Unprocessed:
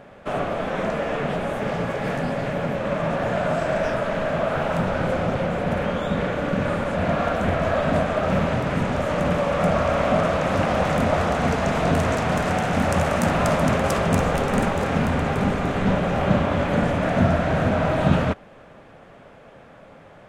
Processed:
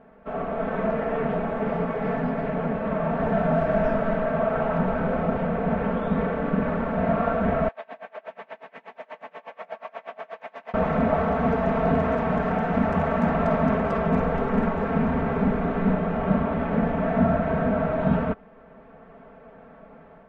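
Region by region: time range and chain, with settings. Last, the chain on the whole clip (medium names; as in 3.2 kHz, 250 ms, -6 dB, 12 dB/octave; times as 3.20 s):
3.17–4.15 s: tone controls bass +5 dB, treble +4 dB + doubling 24 ms -11.5 dB
7.68–10.74 s: high-pass 1 kHz + peaking EQ 1.3 kHz -12 dB 0.5 oct + logarithmic tremolo 8.3 Hz, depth 28 dB
whole clip: level rider gain up to 5.5 dB; low-pass 1.6 kHz 12 dB/octave; comb 4.5 ms, depth 91%; trim -8.5 dB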